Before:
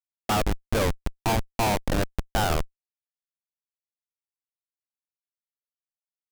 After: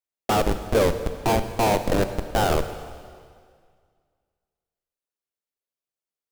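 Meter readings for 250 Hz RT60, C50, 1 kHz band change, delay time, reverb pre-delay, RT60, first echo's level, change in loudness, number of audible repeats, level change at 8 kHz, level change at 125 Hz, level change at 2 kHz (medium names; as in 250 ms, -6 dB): 1.9 s, 10.0 dB, +3.0 dB, no echo, 7 ms, 2.0 s, no echo, +3.5 dB, no echo, +0.5 dB, +1.0 dB, +1.0 dB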